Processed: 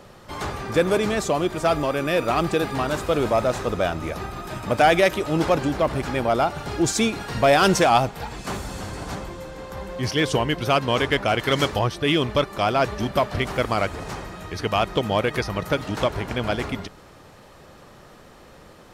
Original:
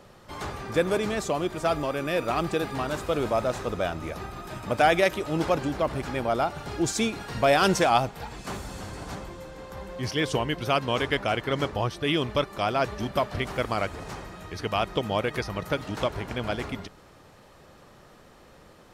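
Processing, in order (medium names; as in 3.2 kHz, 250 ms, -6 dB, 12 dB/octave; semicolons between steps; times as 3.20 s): 11.39–11.79 s: treble shelf 2.3 kHz +9.5 dB; in parallel at -5.5 dB: hard clipper -20.5 dBFS, distortion -12 dB; on the sum: trim +1.5 dB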